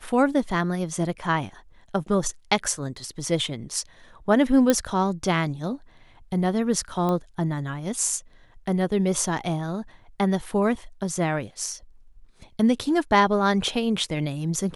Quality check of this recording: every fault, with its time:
4.70 s: pop -6 dBFS
7.09 s: pop -15 dBFS

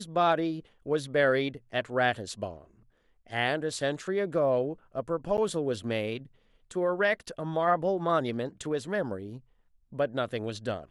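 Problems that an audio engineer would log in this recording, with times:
5.37–5.38 s: dropout 9.3 ms

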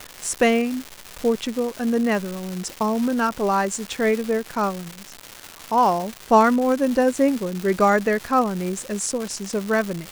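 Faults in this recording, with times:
crackle 410 per s -25 dBFS

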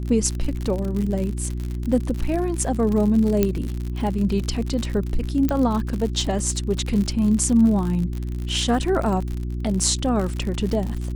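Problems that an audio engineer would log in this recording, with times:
crackle 71 per s -26 dBFS
hum 60 Hz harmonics 6 -27 dBFS
3.43 s: pop -6 dBFS
5.49 s: pop -11 dBFS

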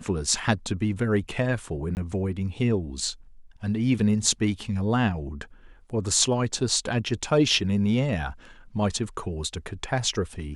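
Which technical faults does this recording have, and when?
1.95–1.97 s: dropout 19 ms

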